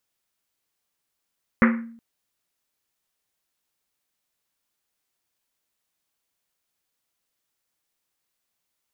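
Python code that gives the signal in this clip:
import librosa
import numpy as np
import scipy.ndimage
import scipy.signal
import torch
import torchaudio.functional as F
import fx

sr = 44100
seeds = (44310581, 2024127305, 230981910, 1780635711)

y = fx.risset_drum(sr, seeds[0], length_s=0.37, hz=230.0, decay_s=0.64, noise_hz=1600.0, noise_width_hz=1100.0, noise_pct=30)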